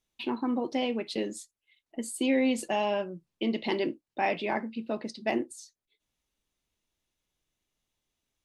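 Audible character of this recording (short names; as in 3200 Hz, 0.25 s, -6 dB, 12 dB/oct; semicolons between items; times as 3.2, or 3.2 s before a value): noise floor -89 dBFS; spectral tilt -4.0 dB/oct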